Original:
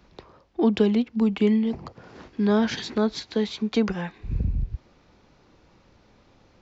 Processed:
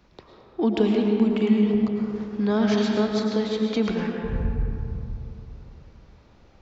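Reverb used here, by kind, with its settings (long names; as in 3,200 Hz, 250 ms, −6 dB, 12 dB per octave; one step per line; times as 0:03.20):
comb and all-pass reverb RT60 2.9 s, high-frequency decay 0.4×, pre-delay 70 ms, DRR 0.5 dB
level −2 dB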